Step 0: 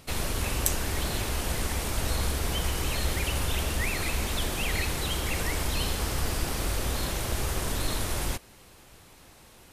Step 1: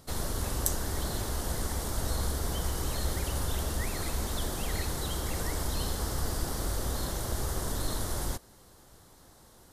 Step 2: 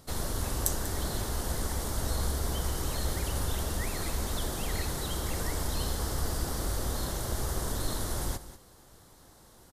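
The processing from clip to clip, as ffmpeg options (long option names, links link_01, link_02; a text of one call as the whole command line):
ffmpeg -i in.wav -af "equalizer=frequency=2500:width_type=o:width=0.59:gain=-14,volume=-2.5dB" out.wav
ffmpeg -i in.wav -af "aecho=1:1:192:0.188" out.wav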